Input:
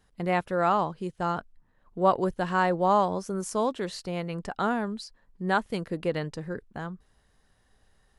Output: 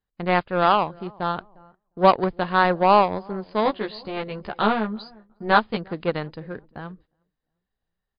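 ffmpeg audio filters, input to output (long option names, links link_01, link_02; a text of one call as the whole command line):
ffmpeg -i in.wav -filter_complex "[0:a]asplit=2[link_01][link_02];[link_02]adelay=354,lowpass=frequency=1300:poles=1,volume=-20dB,asplit=2[link_03][link_04];[link_04]adelay=354,lowpass=frequency=1300:poles=1,volume=0.44,asplit=2[link_05][link_06];[link_06]adelay=354,lowpass=frequency=1300:poles=1,volume=0.44[link_07];[link_01][link_03][link_05][link_07]amix=inputs=4:normalize=0,aeval=exprs='0.335*(cos(1*acos(clip(val(0)/0.335,-1,1)))-cos(1*PI/2))+0.00668*(cos(2*acos(clip(val(0)/0.335,-1,1)))-cos(2*PI/2))+0.00188*(cos(5*acos(clip(val(0)/0.335,-1,1)))-cos(5*PI/2))+0.0299*(cos(7*acos(clip(val(0)/0.335,-1,1)))-cos(7*PI/2))':channel_layout=same,agate=range=-18dB:threshold=-57dB:ratio=16:detection=peak,asettb=1/sr,asplit=3[link_08][link_09][link_10];[link_08]atrim=end=3.644[link_11];[link_09]atrim=start=3.64:end=5.77,asetpts=PTS-STARTPTS,afade=type=in:duration=0.004:curve=qsin,afade=type=out:start_time=2.126:duration=0.004:curve=qsin,asplit=2[link_12][link_13];[link_13]adelay=14,volume=-2dB[link_14];[link_12][link_14]amix=inputs=2:normalize=0,atrim=end_sample=93933[link_15];[link_10]atrim=start=5.766[link_16];[link_11][link_15]acrossfade=duration=0.004:curve1=hsin:curve2=qsin[link_17];[link_17][link_16]acrossfade=duration=0.004:curve1=qsin:curve2=hsin,volume=7dB" -ar 11025 -c:a libmp3lame -b:a 48k out.mp3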